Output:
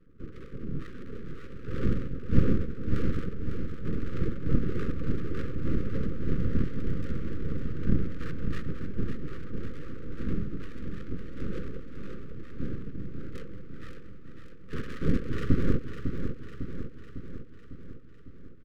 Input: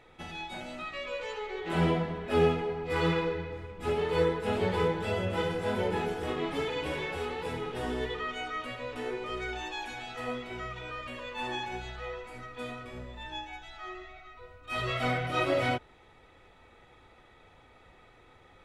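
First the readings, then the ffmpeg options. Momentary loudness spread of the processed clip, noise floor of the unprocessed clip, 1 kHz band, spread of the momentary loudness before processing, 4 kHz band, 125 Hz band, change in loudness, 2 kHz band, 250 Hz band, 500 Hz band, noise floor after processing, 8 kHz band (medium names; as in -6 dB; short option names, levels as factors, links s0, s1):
16 LU, -58 dBFS, -16.0 dB, 13 LU, -15.0 dB, +5.0 dB, -1.5 dB, -11.0 dB, +3.5 dB, -8.5 dB, -43 dBFS, no reading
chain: -filter_complex "[0:a]highpass=f=150:w=0.5412,highpass=f=150:w=1.3066,lowshelf=f=360:t=q:w=3:g=9,aecho=1:1:3.8:0.99,highpass=f=240:t=q:w=0.5412,highpass=f=240:t=q:w=1.307,lowpass=f=3400:t=q:w=0.5176,lowpass=f=3400:t=q:w=0.7071,lowpass=f=3400:t=q:w=1.932,afreqshift=-340,afftfilt=real='hypot(re,im)*cos(2*PI*random(0))':imag='hypot(re,im)*sin(2*PI*random(1))':win_size=512:overlap=0.75,acrossover=split=1300[s0][s1];[s1]acrusher=samples=35:mix=1:aa=0.000001[s2];[s0][s2]amix=inputs=2:normalize=0,adynamicsmooth=sensitivity=7.5:basefreq=1000,aeval=exprs='abs(val(0))':c=same,asuperstop=centerf=790:order=12:qfactor=1.2,aecho=1:1:552|1104|1656|2208|2760|3312|3864|4416:0.422|0.253|0.152|0.0911|0.0547|0.0328|0.0197|0.0118,aeval=exprs='0.335*(cos(1*acos(clip(val(0)/0.335,-1,1)))-cos(1*PI/2))+0.0266*(cos(2*acos(clip(val(0)/0.335,-1,1)))-cos(2*PI/2))':c=same,volume=1.58"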